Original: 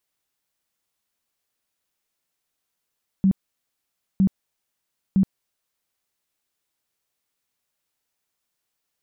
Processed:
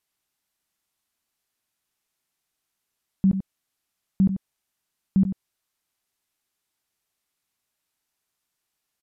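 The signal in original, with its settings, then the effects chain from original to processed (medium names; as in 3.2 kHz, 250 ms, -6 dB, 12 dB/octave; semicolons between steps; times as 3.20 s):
tone bursts 192 Hz, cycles 14, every 0.96 s, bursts 3, -13.5 dBFS
peaking EQ 510 Hz -7 dB 0.27 oct; on a send: delay 91 ms -9.5 dB; on the sum: resampled via 32 kHz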